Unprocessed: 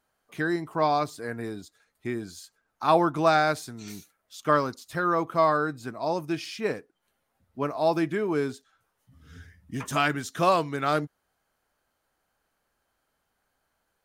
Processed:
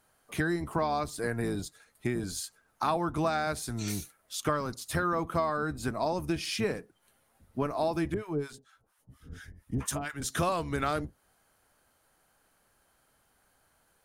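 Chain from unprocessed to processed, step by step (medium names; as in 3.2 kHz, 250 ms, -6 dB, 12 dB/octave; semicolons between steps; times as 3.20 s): octave divider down 1 oct, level -4 dB; peaking EQ 10 kHz +7.5 dB 0.56 oct; compression 6:1, threshold -33 dBFS, peak gain reduction 17 dB; 8.14–10.22 s: harmonic tremolo 4.3 Hz, depth 100%, crossover 820 Hz; trim +6 dB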